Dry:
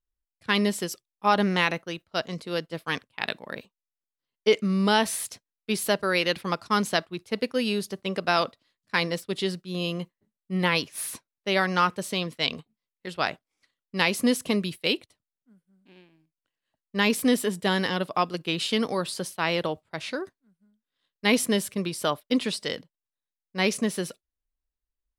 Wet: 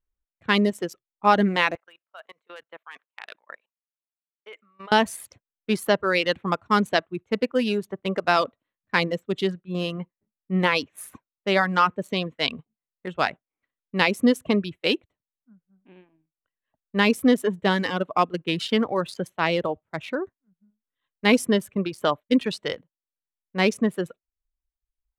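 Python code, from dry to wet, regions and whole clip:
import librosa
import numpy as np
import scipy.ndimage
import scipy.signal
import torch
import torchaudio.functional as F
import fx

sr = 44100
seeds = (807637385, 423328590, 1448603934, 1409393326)

y = fx.chain(x, sr, fx.highpass(hz=900.0, slope=12),
    fx.level_steps(step_db=21), at=(1.75, 4.92))
y = fx.wiener(y, sr, points=9)
y = fx.dereverb_blind(y, sr, rt60_s=1.0)
y = fx.high_shelf(y, sr, hz=4500.0, db=-9.0)
y = F.gain(torch.from_numpy(y), 4.5).numpy()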